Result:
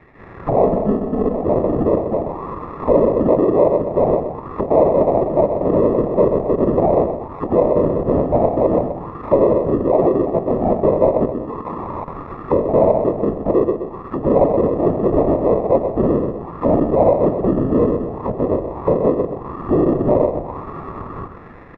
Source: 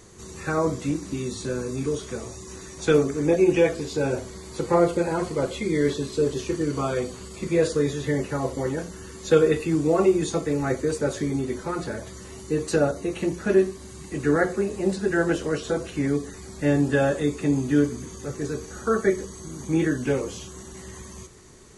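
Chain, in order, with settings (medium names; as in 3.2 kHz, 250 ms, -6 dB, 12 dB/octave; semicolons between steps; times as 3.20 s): whisper effect; 0.62–1.43 s: comb 4.5 ms, depth 65%; 11.26–12.08 s: level held to a coarse grid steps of 19 dB; on a send: feedback delay 126 ms, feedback 43%, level -10 dB; on the sum: level rider gain up to 8.5 dB; peak limiter -9 dBFS, peak gain reduction 7.5 dB; sample-and-hold 29×; touch-sensitive low-pass 660–1900 Hz down, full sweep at -20.5 dBFS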